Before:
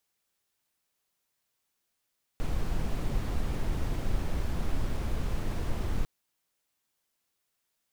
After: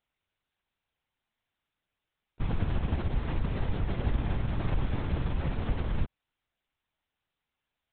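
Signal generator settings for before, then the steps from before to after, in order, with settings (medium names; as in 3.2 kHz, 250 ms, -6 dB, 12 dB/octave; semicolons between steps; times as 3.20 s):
noise brown, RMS -28 dBFS 3.65 s
LPC vocoder at 8 kHz whisper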